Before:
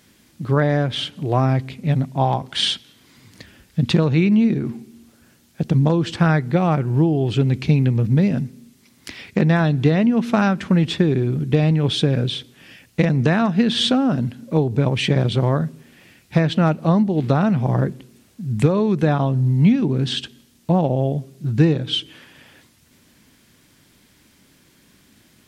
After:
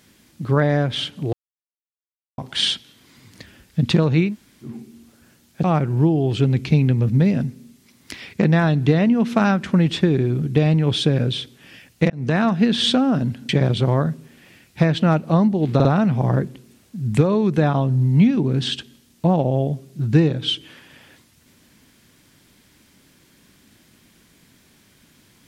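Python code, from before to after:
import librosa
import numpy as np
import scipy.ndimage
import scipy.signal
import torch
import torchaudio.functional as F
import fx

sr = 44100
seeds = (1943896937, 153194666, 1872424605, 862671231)

y = fx.edit(x, sr, fx.silence(start_s=1.33, length_s=1.05),
    fx.room_tone_fill(start_s=4.28, length_s=0.41, crossfade_s=0.16),
    fx.cut(start_s=5.64, length_s=0.97),
    fx.fade_in_span(start_s=13.07, length_s=0.3),
    fx.cut(start_s=14.46, length_s=0.58),
    fx.stutter(start_s=17.3, slice_s=0.05, count=3), tone=tone)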